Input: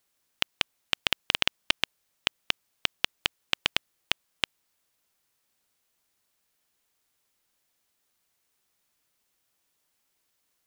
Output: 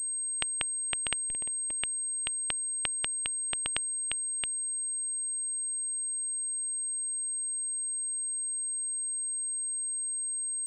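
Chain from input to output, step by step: bass shelf 64 Hz +6.5 dB; 1.23–1.77 s: Schmitt trigger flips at -12.5 dBFS; class-D stage that switches slowly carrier 8.4 kHz; trim -7 dB

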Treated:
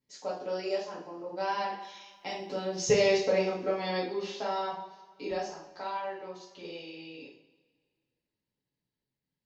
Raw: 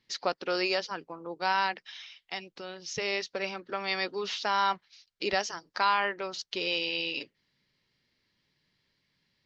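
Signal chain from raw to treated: Doppler pass-by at 2.85 s, 11 m/s, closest 4.9 m; high-order bell 2.6 kHz -12 dB 2.6 oct; two-slope reverb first 0.51 s, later 1.8 s, from -18 dB, DRR -7 dB; trim +5.5 dB

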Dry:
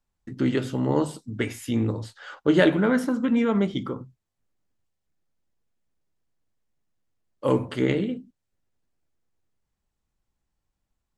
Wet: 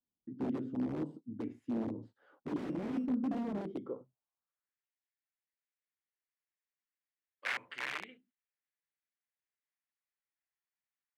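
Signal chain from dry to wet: 2.64–3.06 s: sorted samples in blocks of 16 samples; integer overflow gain 18 dB; band-pass sweep 270 Hz -> 2 kHz, 3.54–4.78 s; trim -4.5 dB

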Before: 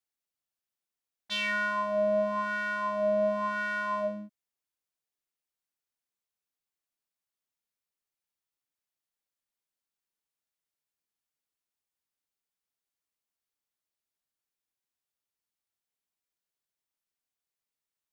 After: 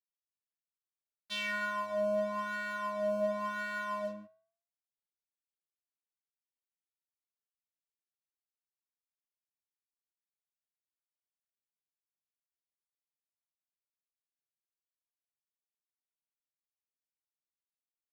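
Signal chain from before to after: crossover distortion -46.5 dBFS; flange 0.15 Hz, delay 7.4 ms, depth 8.3 ms, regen -84%

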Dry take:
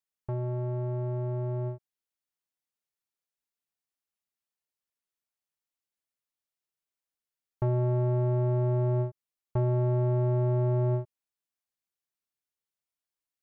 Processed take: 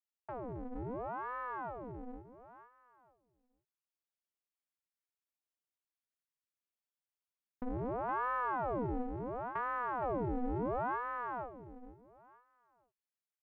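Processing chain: peaking EQ 1.8 kHz +6 dB 0.77 oct; on a send: feedback delay 468 ms, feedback 28%, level -3 dB; on the sum: ring modulator with a swept carrier 640 Hz, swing 80%, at 0.72 Hz; trim -8.5 dB

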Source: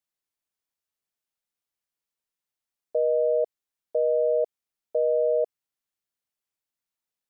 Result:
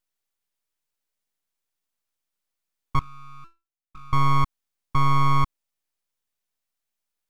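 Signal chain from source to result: 2.99–4.13 s: inharmonic resonator 330 Hz, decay 0.27 s, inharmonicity 0.008; full-wave rectifier; trim +6 dB

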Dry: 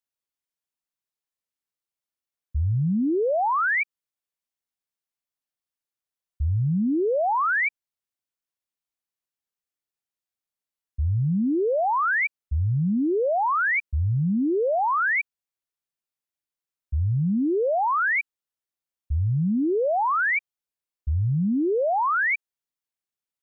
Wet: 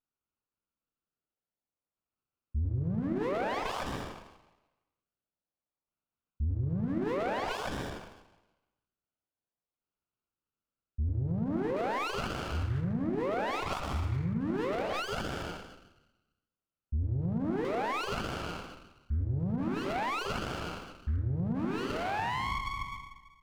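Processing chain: tape stop on the ending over 1.74 s; saturation -24 dBFS, distortion -17 dB; LFO notch saw up 0.51 Hz 440–1700 Hz; plate-style reverb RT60 1.2 s, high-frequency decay 0.65×, pre-delay 85 ms, DRR 2 dB; level-controlled noise filter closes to 1.6 kHz, open at -24 dBFS; peaking EQ 1.4 kHz +15 dB 0.7 oct; compression 12:1, threshold -27 dBFS, peak gain reduction 16 dB; hum notches 50/100/150/200/250/300/350/400/450 Hz; sliding maximum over 17 samples

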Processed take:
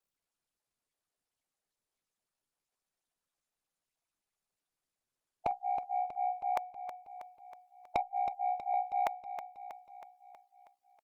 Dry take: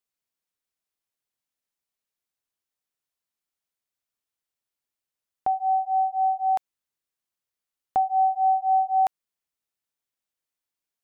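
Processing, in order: harmonic-percussive split harmonic -17 dB; 8.00–8.74 s: Bessel high-pass 500 Hz, order 6; reverb removal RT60 0.66 s; peaking EQ 710 Hz +4.5 dB 0.98 oct; 5.51–6.38 s: gate -55 dBFS, range -40 dB; ring modulator 32 Hz; saturation -29.5 dBFS, distortion -12 dB; feedback delay 320 ms, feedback 57%, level -11 dB; trim +6.5 dB; Opus 32 kbps 48 kHz

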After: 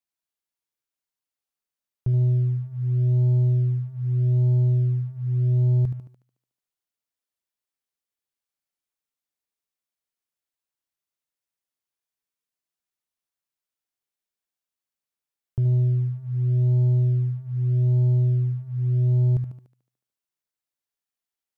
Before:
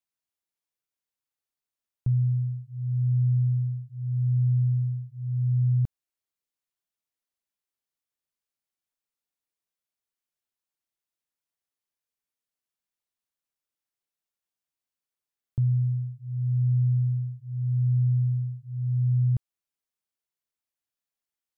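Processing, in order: thinning echo 73 ms, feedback 65%, high-pass 170 Hz, level -6 dB; waveshaping leveller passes 1

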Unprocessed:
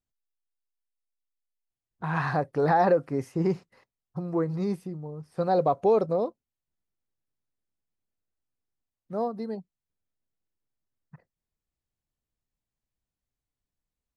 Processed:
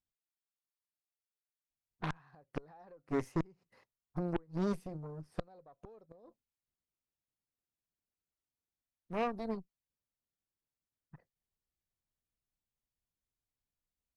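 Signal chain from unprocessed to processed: inverted gate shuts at -18 dBFS, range -29 dB; Chebyshev shaper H 6 -12 dB, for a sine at -17.5 dBFS; trim -6 dB

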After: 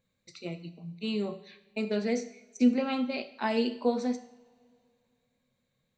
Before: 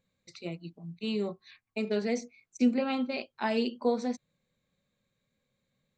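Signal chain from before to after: two-slope reverb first 0.63 s, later 2.7 s, from -22 dB, DRR 9 dB

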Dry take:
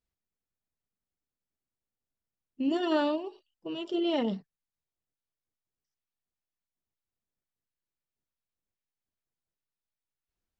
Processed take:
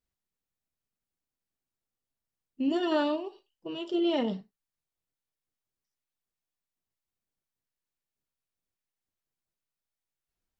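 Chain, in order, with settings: gated-style reverb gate 110 ms falling, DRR 11.5 dB

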